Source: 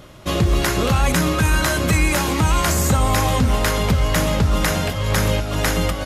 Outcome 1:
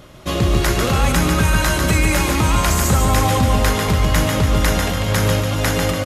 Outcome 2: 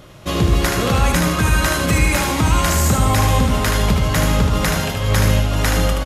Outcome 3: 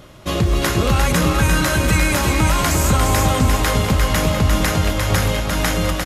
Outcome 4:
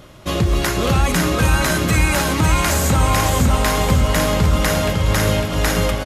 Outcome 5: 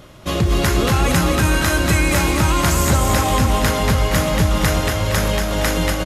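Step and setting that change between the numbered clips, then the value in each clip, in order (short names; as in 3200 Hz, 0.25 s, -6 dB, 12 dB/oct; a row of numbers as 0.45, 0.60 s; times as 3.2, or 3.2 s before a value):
feedback echo, time: 145, 76, 350, 553, 234 ms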